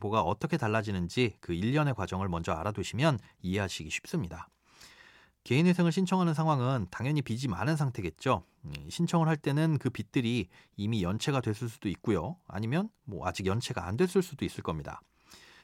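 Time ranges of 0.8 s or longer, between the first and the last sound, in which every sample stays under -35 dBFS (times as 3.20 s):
4.42–5.46 s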